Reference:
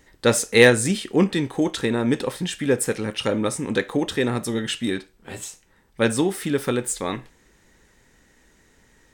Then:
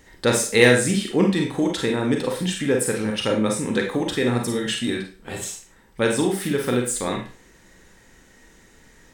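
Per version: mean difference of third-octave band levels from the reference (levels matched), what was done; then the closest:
4.5 dB: in parallel at +1.5 dB: downward compressor, threshold −32 dBFS, peak gain reduction 21.5 dB
on the sum: four-comb reverb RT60 0.34 s, combs from 33 ms, DRR 2 dB
level −3.5 dB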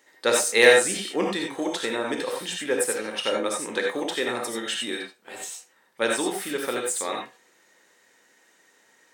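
7.0 dB: high-pass filter 440 Hz 12 dB per octave
reverb whose tail is shaped and stops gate 110 ms rising, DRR 0.5 dB
level −2.5 dB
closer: first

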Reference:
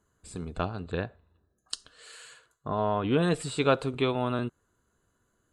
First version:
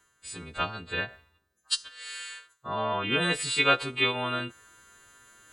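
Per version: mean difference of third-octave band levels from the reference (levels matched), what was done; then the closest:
5.5 dB: every partial snapped to a pitch grid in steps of 2 semitones
reversed playback
upward compression, threshold −42 dBFS
reversed playback
parametric band 2,300 Hz +13 dB 2.1 octaves
level −5.5 dB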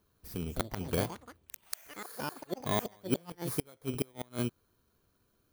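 14.5 dB: samples in bit-reversed order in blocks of 16 samples
gate with flip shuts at −17 dBFS, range −33 dB
delay with pitch and tempo change per echo 316 ms, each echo +6 semitones, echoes 3, each echo −6 dB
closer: first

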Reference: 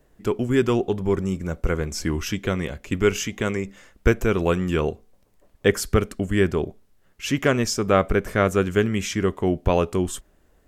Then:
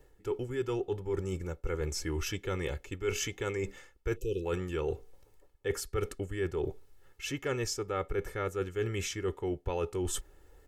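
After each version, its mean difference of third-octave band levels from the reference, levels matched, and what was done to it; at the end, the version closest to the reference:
4.0 dB: time-frequency box erased 0:04.16–0:04.44, 550–2,400 Hz
comb filter 2.3 ms, depth 77%
reversed playback
downward compressor 5 to 1, threshold −30 dBFS, peak gain reduction 19 dB
reversed playback
level −1.5 dB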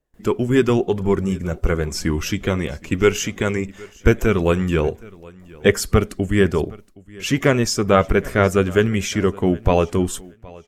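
1.5 dB: spectral magnitudes quantised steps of 15 dB
noise gate with hold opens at −49 dBFS
on a send: repeating echo 768 ms, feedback 20%, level −23 dB
on the sum: level +4 dB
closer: second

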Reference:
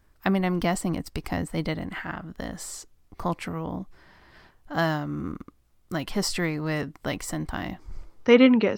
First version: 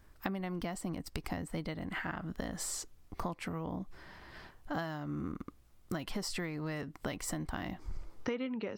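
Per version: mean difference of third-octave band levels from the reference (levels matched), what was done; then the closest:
5.5 dB: downward compressor 16 to 1, threshold −35 dBFS, peak gain reduction 24.5 dB
level +1.5 dB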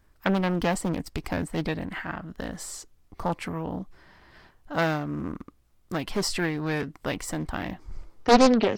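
2.0 dB: highs frequency-modulated by the lows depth 0.86 ms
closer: second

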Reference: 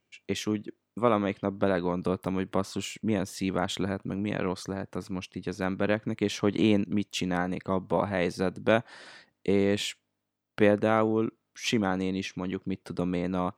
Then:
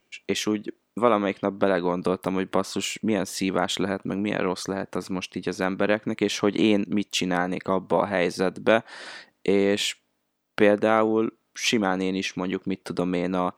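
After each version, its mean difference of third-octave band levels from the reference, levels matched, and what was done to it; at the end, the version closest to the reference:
2.5 dB: parametric band 98 Hz −11 dB 1.5 octaves
in parallel at +0.5 dB: downward compressor, threshold −34 dBFS, peak gain reduction 16 dB
on the sum: level +3 dB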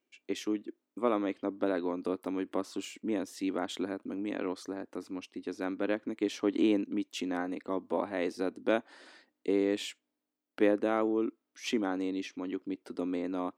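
4.0 dB: low shelf with overshoot 200 Hz −11.5 dB, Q 3
level −7 dB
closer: first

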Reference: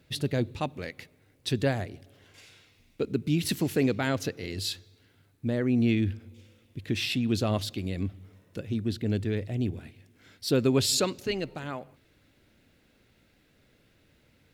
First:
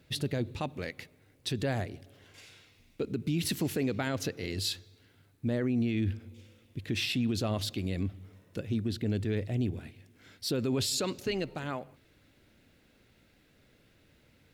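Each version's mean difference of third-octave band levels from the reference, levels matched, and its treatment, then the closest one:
2.5 dB: brickwall limiter −22 dBFS, peak gain reduction 9 dB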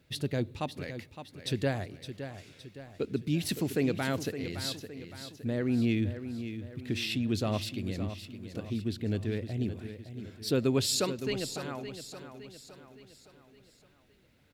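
4.5 dB: repeating echo 564 ms, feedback 48%, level −10.5 dB
level −3.5 dB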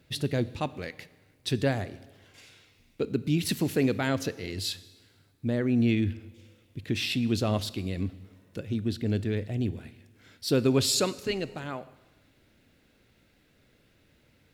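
1.0 dB: four-comb reverb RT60 1.2 s, combs from 26 ms, DRR 17 dB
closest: third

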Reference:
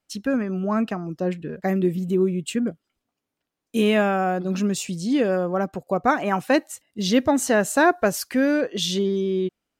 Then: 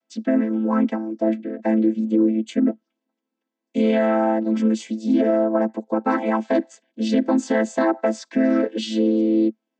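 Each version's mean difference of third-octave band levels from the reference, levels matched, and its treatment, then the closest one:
8.0 dB: channel vocoder with a chord as carrier minor triad, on A3
low-shelf EQ 170 Hz −10 dB
brickwall limiter −17.5 dBFS, peak gain reduction 8 dB
level +7.5 dB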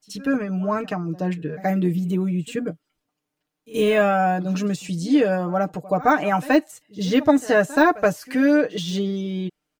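2.5 dB: de-essing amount 75%
comb filter 6.6 ms, depth 77%
echo ahead of the sound 76 ms −20 dB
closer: second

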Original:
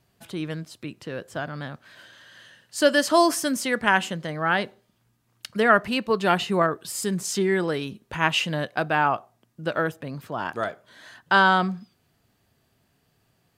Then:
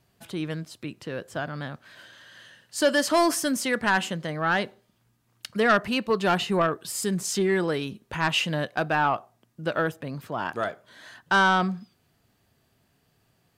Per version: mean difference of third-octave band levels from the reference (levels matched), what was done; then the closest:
1.5 dB: soft clipping −13 dBFS, distortion −14 dB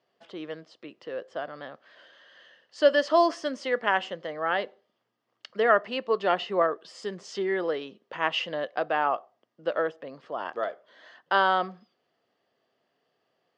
6.0 dB: loudspeaker in its box 460–4,300 Hz, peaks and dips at 510 Hz +4 dB, 910 Hz −5 dB, 1,500 Hz −7 dB, 2,400 Hz −9 dB, 3,900 Hz −9 dB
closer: first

